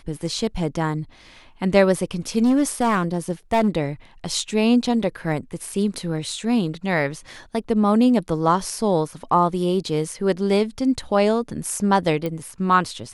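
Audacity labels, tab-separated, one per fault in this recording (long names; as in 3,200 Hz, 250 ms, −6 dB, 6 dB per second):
2.430000	3.690000	clipping −13.5 dBFS
12.260000	12.260000	click −14 dBFS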